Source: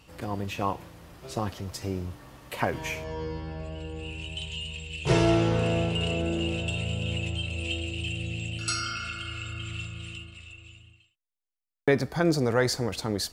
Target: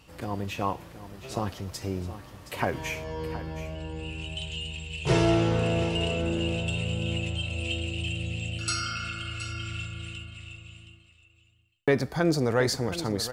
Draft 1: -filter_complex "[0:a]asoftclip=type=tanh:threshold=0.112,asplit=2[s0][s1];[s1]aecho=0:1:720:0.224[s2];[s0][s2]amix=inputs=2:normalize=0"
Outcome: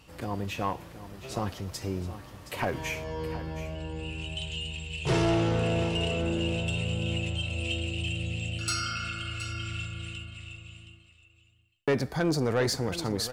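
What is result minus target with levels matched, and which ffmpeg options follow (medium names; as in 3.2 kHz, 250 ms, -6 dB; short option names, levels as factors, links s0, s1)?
saturation: distortion +15 dB
-filter_complex "[0:a]asoftclip=type=tanh:threshold=0.376,asplit=2[s0][s1];[s1]aecho=0:1:720:0.224[s2];[s0][s2]amix=inputs=2:normalize=0"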